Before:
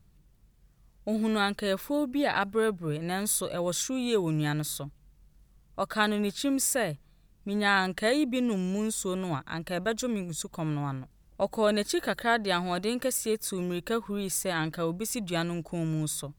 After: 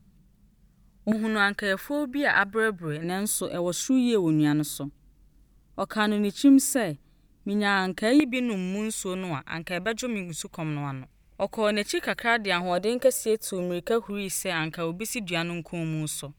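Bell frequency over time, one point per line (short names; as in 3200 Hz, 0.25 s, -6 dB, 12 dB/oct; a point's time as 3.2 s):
bell +12 dB 0.55 oct
200 Hz
from 1.12 s 1700 Hz
from 3.04 s 280 Hz
from 8.2 s 2300 Hz
from 12.61 s 560 Hz
from 14.1 s 2500 Hz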